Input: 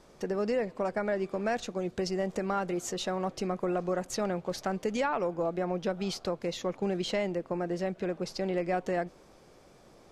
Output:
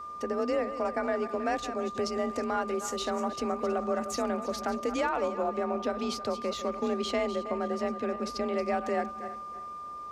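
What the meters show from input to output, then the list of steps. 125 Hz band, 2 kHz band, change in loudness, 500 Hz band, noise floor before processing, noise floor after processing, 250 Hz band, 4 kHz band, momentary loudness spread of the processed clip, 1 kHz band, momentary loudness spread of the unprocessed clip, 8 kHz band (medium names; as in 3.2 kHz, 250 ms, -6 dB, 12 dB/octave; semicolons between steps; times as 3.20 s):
-9.0 dB, +1.0 dB, +1.0 dB, +1.0 dB, -57 dBFS, -41 dBFS, 0.0 dB, +0.5 dB, 3 LU, +3.5 dB, 4 LU, +0.5 dB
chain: backward echo that repeats 160 ms, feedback 50%, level -11 dB; frequency shift +37 Hz; whistle 1.2 kHz -38 dBFS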